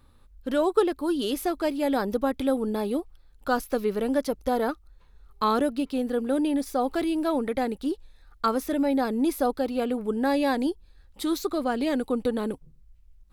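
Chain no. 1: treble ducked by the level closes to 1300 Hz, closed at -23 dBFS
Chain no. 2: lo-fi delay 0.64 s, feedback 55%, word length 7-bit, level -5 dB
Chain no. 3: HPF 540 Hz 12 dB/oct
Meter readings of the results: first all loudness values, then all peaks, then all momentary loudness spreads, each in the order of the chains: -27.0, -26.0, -31.5 LUFS; -10.0, -9.0, -11.5 dBFS; 7, 6, 10 LU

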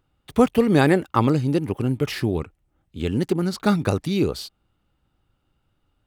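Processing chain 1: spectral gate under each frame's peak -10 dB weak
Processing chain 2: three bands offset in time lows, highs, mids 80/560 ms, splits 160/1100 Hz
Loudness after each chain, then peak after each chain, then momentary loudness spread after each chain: -32.0, -24.0 LUFS; -9.5, -5.5 dBFS; 12, 13 LU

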